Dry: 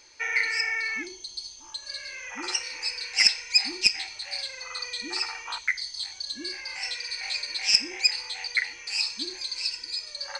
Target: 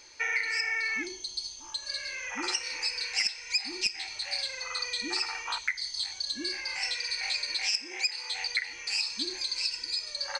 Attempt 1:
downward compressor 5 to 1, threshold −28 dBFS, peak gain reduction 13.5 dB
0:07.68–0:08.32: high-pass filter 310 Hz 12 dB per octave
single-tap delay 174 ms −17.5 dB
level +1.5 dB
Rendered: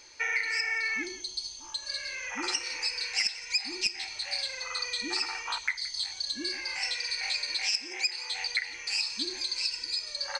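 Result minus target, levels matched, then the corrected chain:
echo-to-direct +11.5 dB
downward compressor 5 to 1, threshold −28 dBFS, peak gain reduction 13.5 dB
0:07.68–0:08.32: high-pass filter 310 Hz 12 dB per octave
single-tap delay 174 ms −29 dB
level +1.5 dB

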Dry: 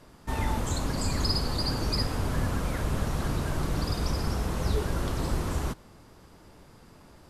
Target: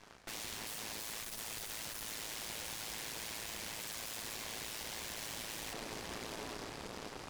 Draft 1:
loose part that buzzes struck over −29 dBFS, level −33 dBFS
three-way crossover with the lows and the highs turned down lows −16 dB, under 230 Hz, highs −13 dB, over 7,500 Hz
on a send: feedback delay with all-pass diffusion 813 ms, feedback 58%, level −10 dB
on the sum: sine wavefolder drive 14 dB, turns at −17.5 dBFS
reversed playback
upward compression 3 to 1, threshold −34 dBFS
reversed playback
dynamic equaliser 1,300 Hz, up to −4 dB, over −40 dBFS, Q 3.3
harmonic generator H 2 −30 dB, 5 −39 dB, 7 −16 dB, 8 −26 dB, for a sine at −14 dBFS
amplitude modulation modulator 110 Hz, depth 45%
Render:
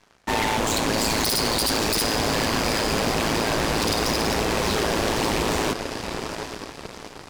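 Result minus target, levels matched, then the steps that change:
sine wavefolder: distortion −26 dB
change: sine wavefolder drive 14 dB, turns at −27 dBFS

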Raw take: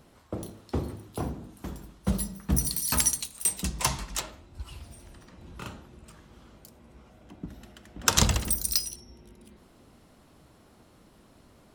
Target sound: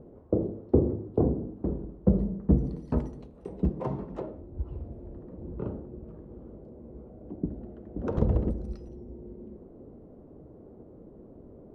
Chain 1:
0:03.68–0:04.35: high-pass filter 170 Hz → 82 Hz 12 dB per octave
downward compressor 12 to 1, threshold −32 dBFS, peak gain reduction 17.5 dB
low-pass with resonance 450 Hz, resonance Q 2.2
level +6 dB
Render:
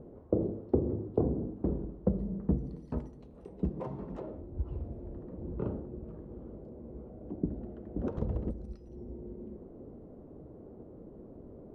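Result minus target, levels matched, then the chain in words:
downward compressor: peak gain reduction +8.5 dB
0:03.68–0:04.35: high-pass filter 170 Hz → 82 Hz 12 dB per octave
downward compressor 12 to 1, threshold −22.5 dBFS, peak gain reduction 8.5 dB
low-pass with resonance 450 Hz, resonance Q 2.2
level +6 dB

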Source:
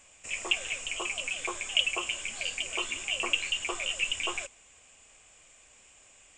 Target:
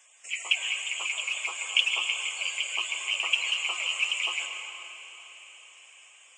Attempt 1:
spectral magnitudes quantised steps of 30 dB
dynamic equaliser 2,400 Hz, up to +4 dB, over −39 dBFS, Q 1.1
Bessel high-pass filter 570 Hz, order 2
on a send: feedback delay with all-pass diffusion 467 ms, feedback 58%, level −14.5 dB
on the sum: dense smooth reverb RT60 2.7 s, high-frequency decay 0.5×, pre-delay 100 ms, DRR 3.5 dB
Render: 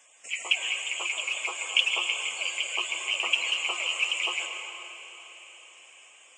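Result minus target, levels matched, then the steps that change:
500 Hz band +6.0 dB
change: Bessel high-pass filter 1,100 Hz, order 2

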